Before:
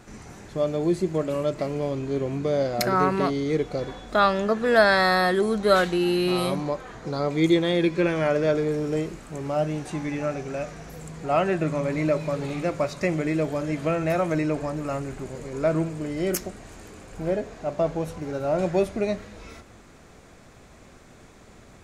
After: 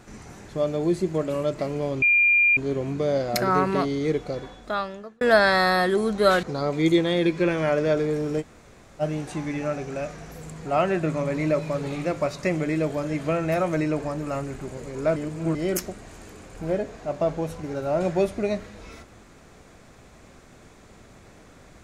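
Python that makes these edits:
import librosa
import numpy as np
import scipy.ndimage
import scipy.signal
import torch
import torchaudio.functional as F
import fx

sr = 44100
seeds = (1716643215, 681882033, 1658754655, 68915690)

y = fx.edit(x, sr, fx.insert_tone(at_s=2.02, length_s=0.55, hz=2400.0, db=-15.0),
    fx.fade_out_span(start_s=3.57, length_s=1.09),
    fx.cut(start_s=5.88, length_s=1.13),
    fx.room_tone_fill(start_s=8.99, length_s=0.6, crossfade_s=0.04),
    fx.reverse_span(start_s=15.74, length_s=0.39), tone=tone)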